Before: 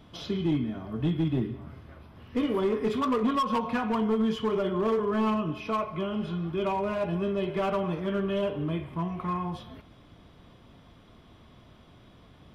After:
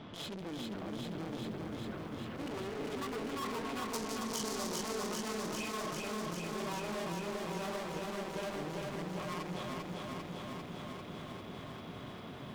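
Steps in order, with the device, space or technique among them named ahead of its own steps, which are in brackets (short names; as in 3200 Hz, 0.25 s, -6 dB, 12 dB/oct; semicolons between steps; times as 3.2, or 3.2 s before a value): valve radio (BPF 130–4200 Hz; tube stage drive 47 dB, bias 0.4; core saturation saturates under 280 Hz); 3.93–4.81 resonant high shelf 3800 Hz +13.5 dB, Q 1.5; lo-fi delay 0.397 s, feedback 80%, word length 13-bit, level -3 dB; gain +8.5 dB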